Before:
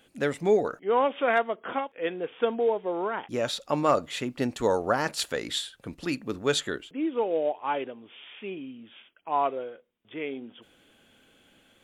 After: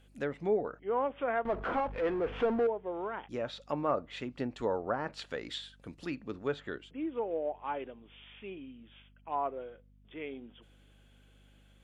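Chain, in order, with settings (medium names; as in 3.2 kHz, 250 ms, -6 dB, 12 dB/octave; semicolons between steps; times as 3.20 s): hum 50 Hz, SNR 25 dB; 1.45–2.67 s: power-law waveshaper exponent 0.5; low-pass that closes with the level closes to 1.6 kHz, closed at -22.5 dBFS; trim -7.5 dB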